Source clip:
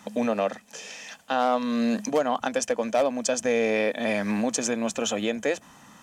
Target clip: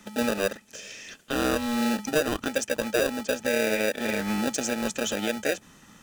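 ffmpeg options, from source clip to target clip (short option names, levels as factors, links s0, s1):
-filter_complex "[0:a]asettb=1/sr,asplit=3[s0][s1][s2];[s0]atrim=end=2.644[s3];[s1]atrim=start=2.64:end=4.54,asetpts=PTS-STARTPTS,afade=t=in:d=0.004:c=qsin,afade=t=out:st=1.896:d=0.004:c=qsin,acrossover=split=3100[s4][s5];[s5]acompressor=threshold=0.00708:ratio=4:attack=1:release=60[s6];[s4][s6]amix=inputs=2:normalize=0[s7];[s2]atrim=start=4.536[s8];[s3][s7]acrossfade=d=0.004:c1=hsin:c2=qsin[s9];[s9][s8]acrossfade=d=0.004:c1=qsin:c2=hsin,acrossover=split=1100[s10][s11];[s10]acrusher=samples=41:mix=1:aa=0.000001[s12];[s11]volume=14.1,asoftclip=hard,volume=0.0708[s13];[s12][s13]amix=inputs=2:normalize=0,volume=0.891"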